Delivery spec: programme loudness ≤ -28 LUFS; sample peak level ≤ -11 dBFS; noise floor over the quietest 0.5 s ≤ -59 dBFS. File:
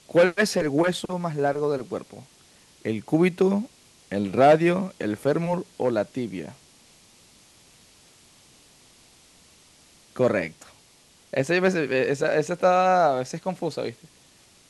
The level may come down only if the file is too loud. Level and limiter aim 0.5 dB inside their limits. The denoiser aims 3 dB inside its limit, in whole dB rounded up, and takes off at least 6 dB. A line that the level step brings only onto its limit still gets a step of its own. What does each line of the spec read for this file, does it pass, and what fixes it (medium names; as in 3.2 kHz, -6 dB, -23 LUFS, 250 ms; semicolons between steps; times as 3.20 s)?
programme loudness -24.0 LUFS: fail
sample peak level -6.5 dBFS: fail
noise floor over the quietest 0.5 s -56 dBFS: fail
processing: trim -4.5 dB; peak limiter -11.5 dBFS